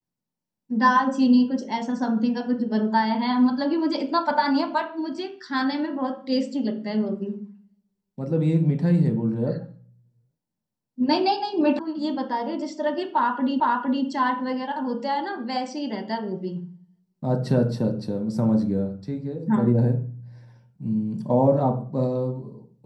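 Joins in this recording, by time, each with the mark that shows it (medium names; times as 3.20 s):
11.79 s: sound stops dead
13.60 s: repeat of the last 0.46 s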